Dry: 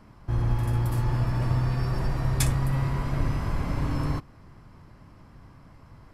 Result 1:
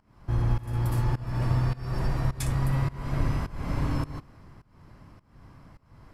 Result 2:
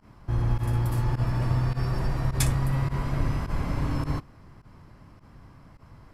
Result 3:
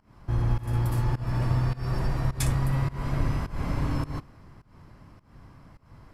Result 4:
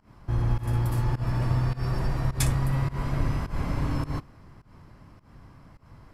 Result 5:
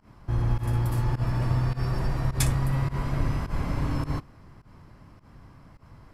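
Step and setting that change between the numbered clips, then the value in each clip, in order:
volume shaper, release: 377 ms, 68 ms, 237 ms, 157 ms, 106 ms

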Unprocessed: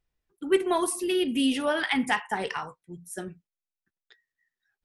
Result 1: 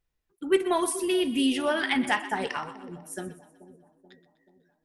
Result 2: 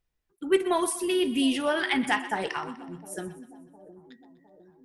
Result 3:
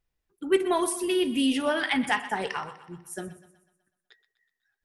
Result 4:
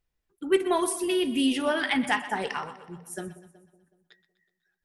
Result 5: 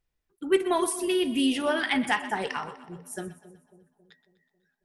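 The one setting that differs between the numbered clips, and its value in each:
two-band feedback delay, lows: 432 ms, 709 ms, 89 ms, 186 ms, 273 ms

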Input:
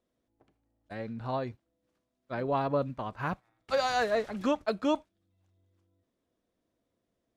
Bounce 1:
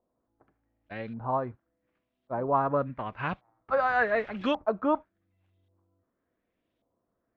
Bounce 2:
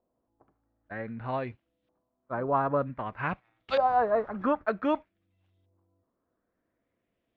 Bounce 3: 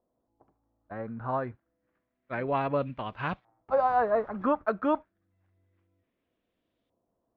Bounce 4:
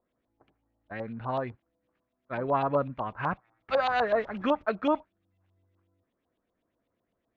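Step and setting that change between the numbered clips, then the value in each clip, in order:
LFO low-pass, rate: 0.88 Hz, 0.53 Hz, 0.29 Hz, 8 Hz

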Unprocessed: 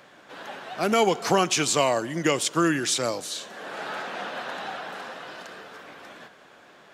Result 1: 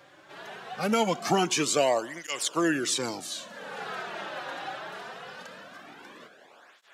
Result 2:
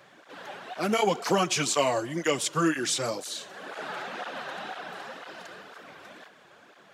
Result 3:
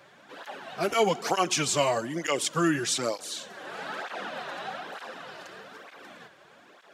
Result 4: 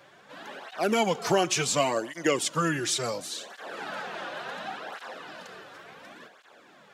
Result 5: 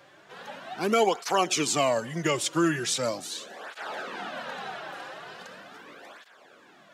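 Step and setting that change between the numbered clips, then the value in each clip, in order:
cancelling through-zero flanger, nulls at: 0.22 Hz, 2 Hz, 1.1 Hz, 0.7 Hz, 0.4 Hz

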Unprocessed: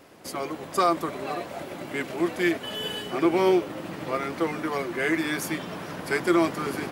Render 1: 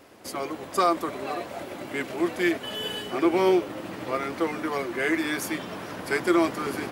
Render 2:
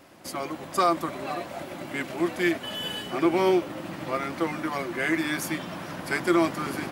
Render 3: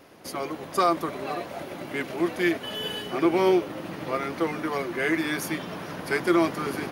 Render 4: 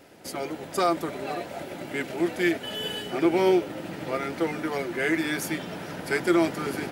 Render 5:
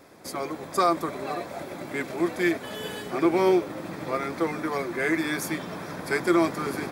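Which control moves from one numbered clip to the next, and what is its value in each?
band-stop, frequency: 160 Hz, 440 Hz, 7.7 kHz, 1.1 kHz, 2.9 kHz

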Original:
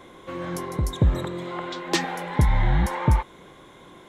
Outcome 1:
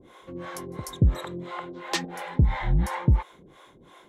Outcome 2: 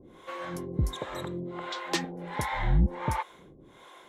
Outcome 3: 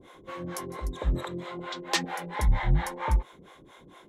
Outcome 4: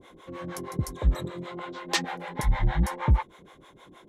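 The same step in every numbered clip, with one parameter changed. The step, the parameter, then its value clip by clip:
harmonic tremolo, rate: 2.9 Hz, 1.4 Hz, 4.4 Hz, 6.4 Hz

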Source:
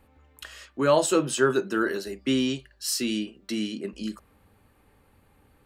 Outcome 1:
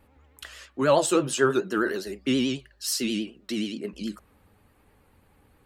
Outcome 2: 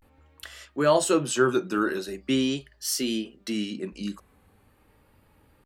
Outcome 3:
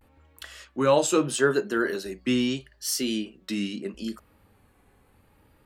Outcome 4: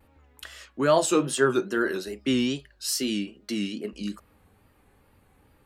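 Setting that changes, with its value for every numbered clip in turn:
vibrato, rate: 9.4 Hz, 0.43 Hz, 0.77 Hz, 2.4 Hz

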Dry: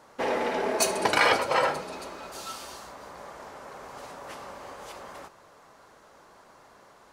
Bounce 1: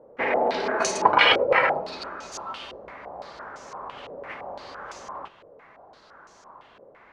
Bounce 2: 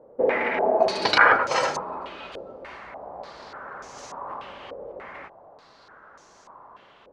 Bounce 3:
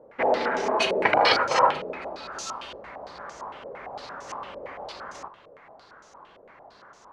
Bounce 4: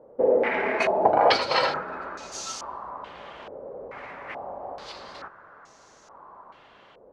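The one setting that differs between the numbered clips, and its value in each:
step-sequenced low-pass, rate: 5.9 Hz, 3.4 Hz, 8.8 Hz, 2.3 Hz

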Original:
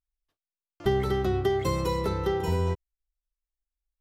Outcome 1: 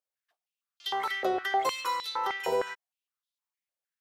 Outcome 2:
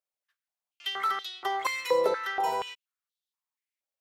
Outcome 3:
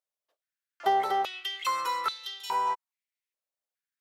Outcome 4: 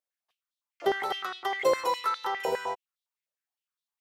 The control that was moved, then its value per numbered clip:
step-sequenced high-pass, rate: 6.5 Hz, 4.2 Hz, 2.4 Hz, 9.8 Hz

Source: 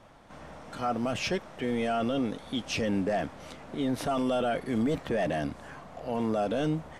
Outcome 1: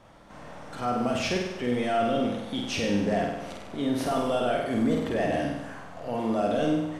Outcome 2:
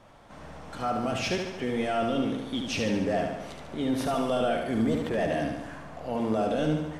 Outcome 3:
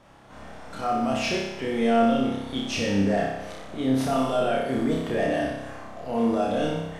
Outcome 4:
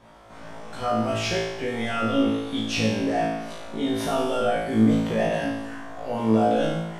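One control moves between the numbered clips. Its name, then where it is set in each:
flutter echo, walls apart: 8.4 m, 12.4 m, 5.2 m, 3.1 m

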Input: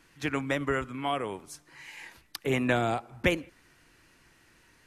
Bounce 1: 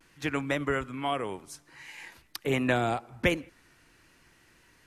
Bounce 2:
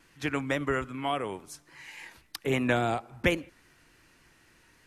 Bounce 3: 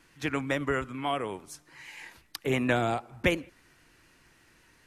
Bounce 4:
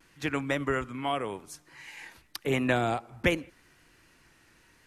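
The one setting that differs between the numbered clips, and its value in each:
vibrato, rate: 0.49 Hz, 3.6 Hz, 8.7 Hz, 0.85 Hz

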